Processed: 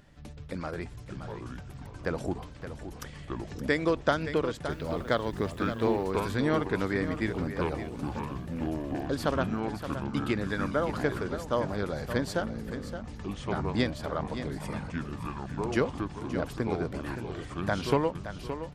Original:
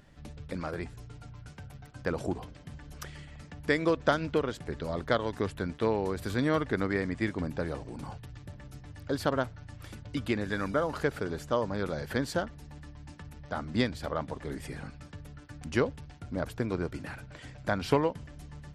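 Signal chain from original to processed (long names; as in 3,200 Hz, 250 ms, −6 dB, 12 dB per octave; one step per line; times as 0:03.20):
0:04.69–0:06.10: background noise white −67 dBFS
delay with pitch and tempo change per echo 384 ms, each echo −6 semitones, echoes 3, each echo −6 dB
on a send: single-tap delay 570 ms −10.5 dB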